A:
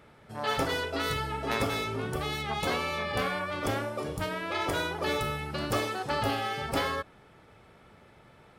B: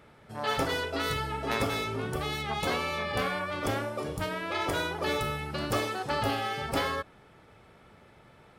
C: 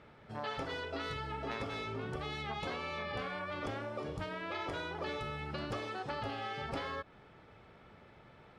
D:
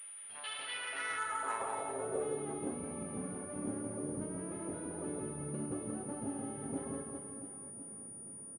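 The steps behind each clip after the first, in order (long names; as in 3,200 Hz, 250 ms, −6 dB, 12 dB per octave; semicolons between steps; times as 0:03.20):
no processing that can be heard
low-pass filter 4,700 Hz 12 dB per octave; downward compressor 4 to 1, threshold −35 dBFS, peak gain reduction 10 dB; level −2 dB
reverse bouncing-ball delay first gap 170 ms, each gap 1.3×, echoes 5; band-pass filter sweep 3,100 Hz → 240 Hz, 0:00.64–0:02.81; switching amplifier with a slow clock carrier 9,500 Hz; level +7 dB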